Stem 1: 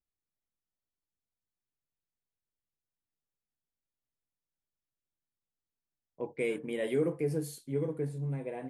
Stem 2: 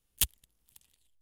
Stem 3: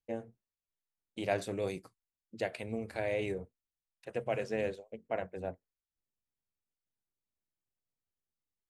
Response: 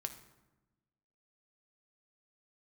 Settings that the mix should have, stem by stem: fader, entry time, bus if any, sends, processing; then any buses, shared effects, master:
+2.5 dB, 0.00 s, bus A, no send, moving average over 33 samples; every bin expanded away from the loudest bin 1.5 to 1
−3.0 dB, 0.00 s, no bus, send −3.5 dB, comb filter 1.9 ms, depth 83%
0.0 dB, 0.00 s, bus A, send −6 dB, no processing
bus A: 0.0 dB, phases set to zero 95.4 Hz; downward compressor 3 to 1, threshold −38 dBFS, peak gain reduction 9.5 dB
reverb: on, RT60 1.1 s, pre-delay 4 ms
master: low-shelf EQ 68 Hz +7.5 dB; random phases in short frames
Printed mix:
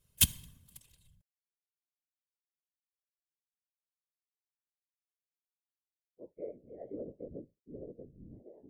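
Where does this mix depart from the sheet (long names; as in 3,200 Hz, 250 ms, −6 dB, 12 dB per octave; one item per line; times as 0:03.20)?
stem 1 +2.5 dB → −5.5 dB
stem 3: muted
master: missing low-shelf EQ 68 Hz +7.5 dB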